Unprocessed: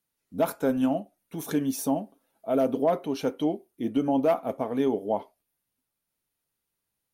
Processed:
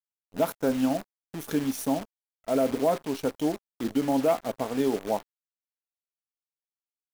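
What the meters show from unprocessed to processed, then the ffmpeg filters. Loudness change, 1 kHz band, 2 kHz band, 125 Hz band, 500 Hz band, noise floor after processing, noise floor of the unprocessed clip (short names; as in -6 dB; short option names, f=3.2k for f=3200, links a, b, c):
-0.5 dB, -0.5 dB, +2.0 dB, -0.5 dB, -0.5 dB, under -85 dBFS, -83 dBFS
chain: -af "aeval=exprs='sgn(val(0))*max(abs(val(0))-0.00562,0)':c=same,acrusher=bits=7:dc=4:mix=0:aa=0.000001"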